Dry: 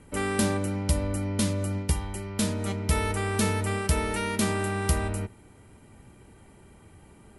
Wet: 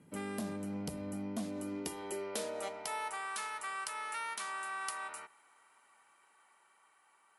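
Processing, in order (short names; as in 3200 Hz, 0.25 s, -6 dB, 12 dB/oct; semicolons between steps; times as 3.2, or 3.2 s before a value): Doppler pass-by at 2.57, 7 m/s, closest 7.2 m; compressor 2:1, threshold -37 dBFS, peak gain reduction 10 dB; high-pass sweep 170 Hz -> 1100 Hz, 1.04–3.37; vocal rider 0.5 s; core saturation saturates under 710 Hz; gain -2 dB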